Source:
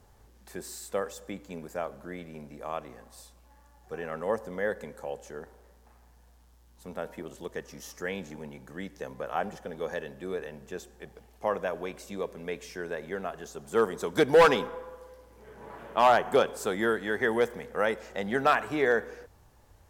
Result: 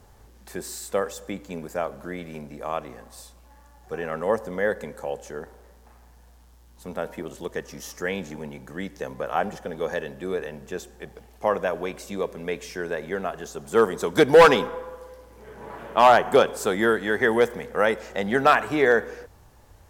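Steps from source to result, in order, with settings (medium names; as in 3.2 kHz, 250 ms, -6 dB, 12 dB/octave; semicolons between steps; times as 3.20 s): 1.76–2.39 s: tape noise reduction on one side only encoder only; trim +6 dB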